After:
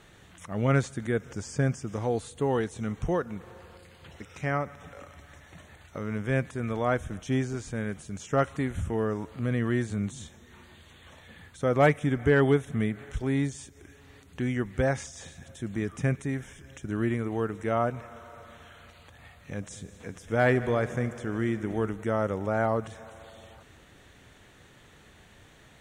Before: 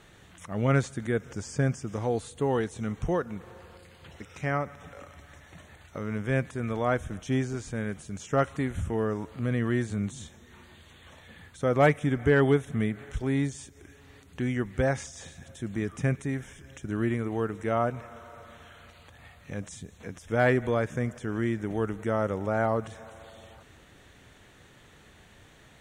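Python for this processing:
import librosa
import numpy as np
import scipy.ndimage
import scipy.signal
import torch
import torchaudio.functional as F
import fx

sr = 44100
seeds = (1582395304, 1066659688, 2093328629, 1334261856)

y = fx.echo_heads(x, sr, ms=72, heads='all three', feedback_pct=67, wet_db=-22.0, at=(19.69, 21.89), fade=0.02)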